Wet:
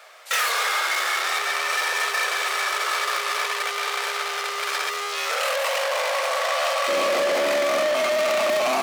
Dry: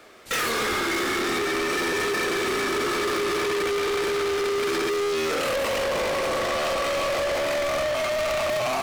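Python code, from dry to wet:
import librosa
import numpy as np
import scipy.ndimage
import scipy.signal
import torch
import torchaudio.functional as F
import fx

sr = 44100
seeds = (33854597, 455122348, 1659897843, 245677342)

y = fx.steep_highpass(x, sr, hz=fx.steps((0.0, 570.0), (6.87, 190.0)), slope=36)
y = F.gain(torch.from_numpy(y), 3.5).numpy()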